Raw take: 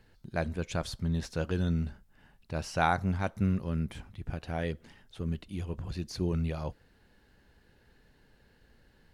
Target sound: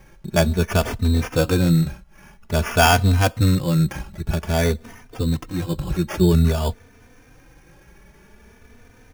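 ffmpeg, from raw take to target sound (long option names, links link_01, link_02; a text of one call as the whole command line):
ffmpeg -i in.wav -filter_complex "[0:a]apsyclip=17.5dB,acrusher=samples=11:mix=1:aa=0.000001,asplit=2[link_01][link_02];[link_02]adelay=3.2,afreqshift=0.51[link_03];[link_01][link_03]amix=inputs=2:normalize=1,volume=-1dB" out.wav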